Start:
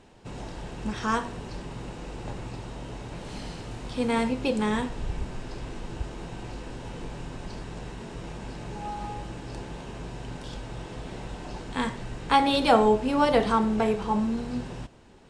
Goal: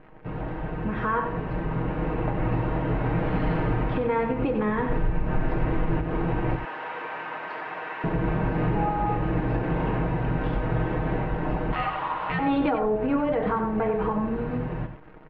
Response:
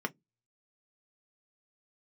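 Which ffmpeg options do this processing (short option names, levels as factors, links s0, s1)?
-filter_complex "[0:a]acrusher=bits=9:dc=4:mix=0:aa=0.000001,asettb=1/sr,asplit=3[s0][s1][s2];[s0]atrim=end=6.554[s3];[s1]atrim=start=6.55:end=8.04,asetpts=PTS-STARTPTS,afade=t=in:d=0.004:c=qsin,afade=t=out:st=1.486:d=0.004:c=qsin,highpass=930[s4];[s2]atrim=start=8.036[s5];[s3][s4]acrossfade=d=0.004:c1=hsin:c2=qsin[s6];[s6][s5]acrossfade=d=0.004:c1=qsin:c2=hsin,dynaudnorm=f=410:g=11:m=2.99,lowpass=f=2100:w=0.5412,lowpass=f=2100:w=1.3066,acompressor=threshold=0.0891:ratio=6,alimiter=limit=0.0794:level=0:latency=1:release=152,asettb=1/sr,asplit=3[s7][s8][s9];[s7]atrim=end=11.734[s10];[s8]atrim=start=11.73:end=12.39,asetpts=PTS-STARTPTS,afade=t=in:d=0.004:c=qsin,afade=t=out:st=0.656:d=0.004:c=qsin,aeval=exprs='val(0)*sin(2*PI*1000*n/s)':c=same[s11];[s9]atrim=start=12.386[s12];[s10][s11]acrossfade=d=0.004:c1=hsin:c2=qsin[s13];[s13][s12]acrossfade=d=0.004:c1=qsin:c2=hsin,aecho=1:1:6.4:0.6,asplit=2[s14][s15];[s15]adelay=93.29,volume=0.398,highshelf=f=4000:g=-2.1[s16];[s14][s16]amix=inputs=2:normalize=0,volume=1.68"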